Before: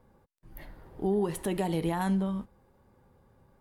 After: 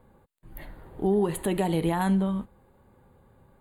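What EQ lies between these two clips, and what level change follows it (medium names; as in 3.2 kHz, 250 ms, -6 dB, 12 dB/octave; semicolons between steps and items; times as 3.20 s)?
Butterworth band-stop 5.5 kHz, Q 2.5; +4.0 dB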